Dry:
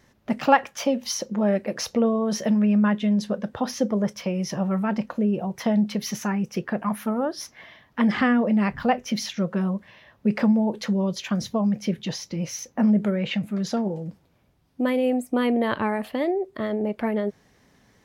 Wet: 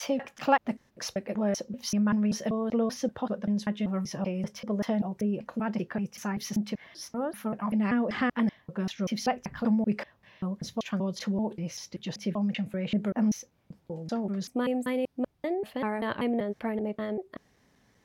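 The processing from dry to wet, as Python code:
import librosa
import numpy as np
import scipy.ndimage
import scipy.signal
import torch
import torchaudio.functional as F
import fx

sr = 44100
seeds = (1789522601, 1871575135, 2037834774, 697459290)

y = fx.block_reorder(x, sr, ms=193.0, group=5)
y = F.gain(torch.from_numpy(y), -6.0).numpy()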